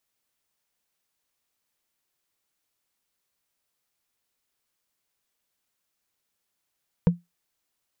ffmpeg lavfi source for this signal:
-f lavfi -i "aevalsrc='0.299*pow(10,-3*t/0.18)*sin(2*PI*173*t)+0.119*pow(10,-3*t/0.053)*sin(2*PI*477*t)+0.0473*pow(10,-3*t/0.024)*sin(2*PI*934.9*t)+0.0188*pow(10,-3*t/0.013)*sin(2*PI*1545.4*t)+0.0075*pow(10,-3*t/0.008)*sin(2*PI*2307.8*t)':d=0.45:s=44100"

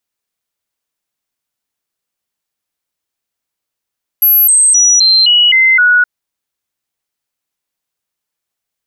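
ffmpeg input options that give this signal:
-f lavfi -i "aevalsrc='0.562*clip(min(mod(t,0.26),0.26-mod(t,0.26))/0.005,0,1)*sin(2*PI*11700*pow(2,-floor(t/0.26)/2)*mod(t,0.26))':d=1.82:s=44100"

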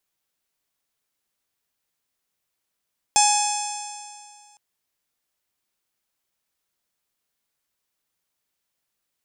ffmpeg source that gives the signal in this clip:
-f lavfi -i "aevalsrc='0.158*pow(10,-3*t/2.14)*sin(2*PI*829.45*t)+0.0178*pow(10,-3*t/2.14)*sin(2*PI*1667.55*t)+0.0501*pow(10,-3*t/2.14)*sin(2*PI*2522.82*t)+0.0398*pow(10,-3*t/2.14)*sin(2*PI*3403.47*t)+0.0211*pow(10,-3*t/2.14)*sin(2*PI*4317.33*t)+0.0794*pow(10,-3*t/2.14)*sin(2*PI*5271.7*t)+0.0794*pow(10,-3*t/2.14)*sin(2*PI*6273.35*t)+0.1*pow(10,-3*t/2.14)*sin(2*PI*7328.43*t)+0.0708*pow(10,-3*t/2.14)*sin(2*PI*8442.49*t)+0.0335*pow(10,-3*t/2.14)*sin(2*PI*9620.49*t)':d=1.41:s=44100"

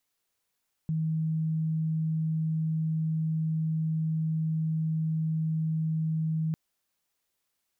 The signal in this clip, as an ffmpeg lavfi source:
-f lavfi -i "aevalsrc='0.0531*sin(2*PI*159*t)':d=5.65:s=44100"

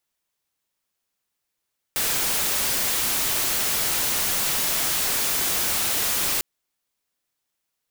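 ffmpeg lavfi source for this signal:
-f lavfi -i "anoisesrc=c=white:a=0.116:d=4.45:r=44100:seed=1"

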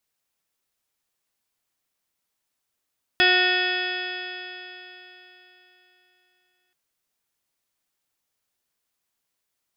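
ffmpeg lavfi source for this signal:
-f lavfi -i "aevalsrc='0.0631*pow(10,-3*t/3.65)*sin(2*PI*363.14*t)+0.0562*pow(10,-3*t/3.65)*sin(2*PI*727.13*t)+0.0075*pow(10,-3*t/3.65)*sin(2*PI*1092.82*t)+0.0708*pow(10,-3*t/3.65)*sin(2*PI*1461.03*t)+0.112*pow(10,-3*t/3.65)*sin(2*PI*1832.61*t)+0.02*pow(10,-3*t/3.65)*sin(2*PI*2208.37*t)+0.0891*pow(10,-3*t/3.65)*sin(2*PI*2589.1*t)+0.0211*pow(10,-3*t/3.65)*sin(2*PI*2975.6*t)+0.1*pow(10,-3*t/3.65)*sin(2*PI*3368.62*t)+0.0112*pow(10,-3*t/3.65)*sin(2*PI*3768.91*t)+0.01*pow(10,-3*t/3.65)*sin(2*PI*4177.18*t)+0.0141*pow(10,-3*t/3.65)*sin(2*PI*4594.12*t)+0.0376*pow(10,-3*t/3.65)*sin(2*PI*5020.4*t)':d=3.53:s=44100"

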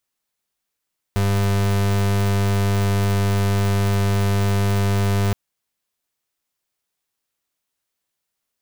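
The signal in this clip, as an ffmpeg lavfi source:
-f lavfi -i "aevalsrc='0.119*(2*lt(mod(99.6*t,1),0.36)-1)':d=4.17:s=44100"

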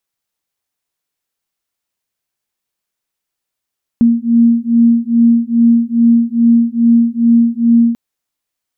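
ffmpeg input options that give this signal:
-f lavfi -i "aevalsrc='0.299*(sin(2*PI*232*t)+sin(2*PI*234.4*t))':d=3.94:s=44100"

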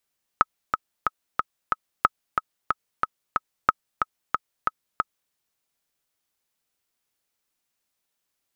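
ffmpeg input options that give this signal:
-f lavfi -i "aevalsrc='pow(10,(-2.5-5.5*gte(mod(t,5*60/183),60/183))/20)*sin(2*PI*1280*mod(t,60/183))*exp(-6.91*mod(t,60/183)/0.03)':d=4.91:s=44100"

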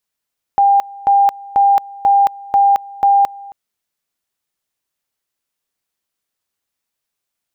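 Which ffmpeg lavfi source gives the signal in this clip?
-f lavfi -i "aevalsrc='pow(10,(-7.5-22.5*gte(mod(t,0.49),0.22))/20)*sin(2*PI*799*t)':d=2.94:s=44100"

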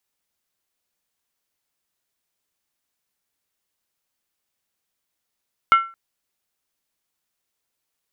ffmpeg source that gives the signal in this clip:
-f lavfi -i "aevalsrc='0.447*pow(10,-3*t/0.33)*sin(2*PI*1350*t)+0.158*pow(10,-3*t/0.261)*sin(2*PI*2151.9*t)+0.0562*pow(10,-3*t/0.226)*sin(2*PI*2883.6*t)+0.02*pow(10,-3*t/0.218)*sin(2*PI*3099.6*t)+0.00708*pow(10,-3*t/0.203)*sin(2*PI*3581.6*t)':d=0.22:s=44100"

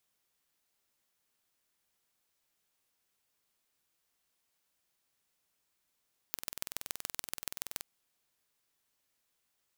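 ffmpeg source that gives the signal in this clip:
-f lavfi -i "aevalsrc='0.447*eq(mod(n,2090),0)*(0.5+0.5*eq(mod(n,6270),0))':d=1.5:s=44100"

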